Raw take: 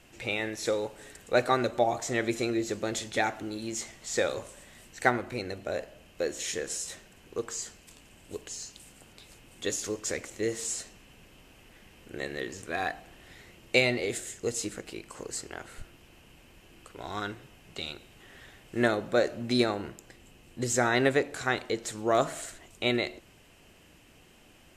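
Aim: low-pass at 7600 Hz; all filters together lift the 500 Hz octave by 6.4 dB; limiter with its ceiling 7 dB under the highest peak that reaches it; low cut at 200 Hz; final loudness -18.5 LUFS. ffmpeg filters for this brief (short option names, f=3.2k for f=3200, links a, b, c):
-af "highpass=200,lowpass=7.6k,equalizer=f=500:t=o:g=8,volume=10dB,alimiter=limit=-2dB:level=0:latency=1"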